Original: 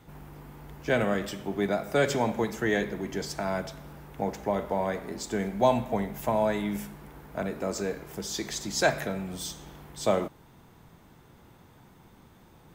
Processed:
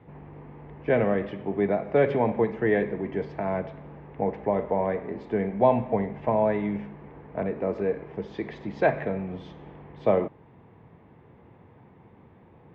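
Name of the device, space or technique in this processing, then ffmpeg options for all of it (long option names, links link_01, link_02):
bass cabinet: -af "highpass=73,equalizer=frequency=100:width_type=q:width=4:gain=4,equalizer=frequency=460:width_type=q:width=4:gain=5,equalizer=frequency=1400:width_type=q:width=4:gain=-9,lowpass=frequency=2300:width=0.5412,lowpass=frequency=2300:width=1.3066,volume=2dB"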